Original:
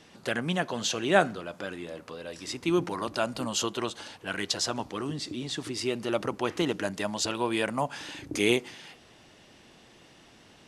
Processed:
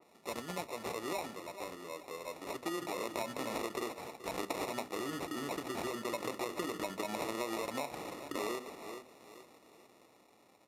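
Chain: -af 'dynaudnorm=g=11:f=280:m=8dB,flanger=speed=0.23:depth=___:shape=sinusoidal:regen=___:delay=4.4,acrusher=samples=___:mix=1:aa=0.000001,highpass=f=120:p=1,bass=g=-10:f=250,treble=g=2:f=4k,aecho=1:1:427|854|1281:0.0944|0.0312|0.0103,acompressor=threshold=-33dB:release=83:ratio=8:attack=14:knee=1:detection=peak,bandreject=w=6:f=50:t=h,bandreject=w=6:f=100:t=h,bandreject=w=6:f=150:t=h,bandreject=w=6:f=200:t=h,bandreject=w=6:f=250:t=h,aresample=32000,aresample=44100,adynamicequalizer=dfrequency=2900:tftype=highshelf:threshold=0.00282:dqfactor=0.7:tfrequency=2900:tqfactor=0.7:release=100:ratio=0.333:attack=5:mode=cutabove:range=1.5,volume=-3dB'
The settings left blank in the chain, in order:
6, -63, 28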